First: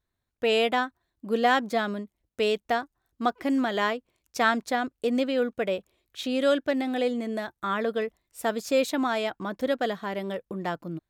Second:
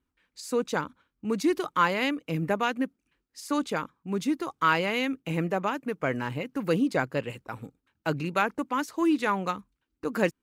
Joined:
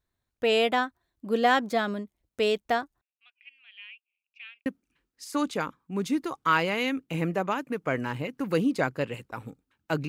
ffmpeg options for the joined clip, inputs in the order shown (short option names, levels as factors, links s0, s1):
-filter_complex "[0:a]asettb=1/sr,asplit=3[s0][s1][s2];[s0]atrim=end=3.014[s3];[s1]atrim=start=3.01:end=4.66,asetpts=PTS-STARTPTS,afade=t=in:d=0.004:c=qsin,afade=t=out:st=1.646:d=0.004:c=qsin,asuperpass=centerf=2600:order=4:qfactor=5.9[s4];[s2]atrim=start=4.656[s5];[s3][s4]acrossfade=d=0.004:c1=hsin:c2=qsin[s6];[s6][s5]acrossfade=d=0.004:c1=qsin:c2=hsin,apad=whole_dur=10.08,atrim=end=10.08,atrim=end=4.662[s7];[1:a]atrim=start=2.818:end=8.24[s8];[s7][s8]acrossfade=d=0.004:c1=hsin:c2=hsin"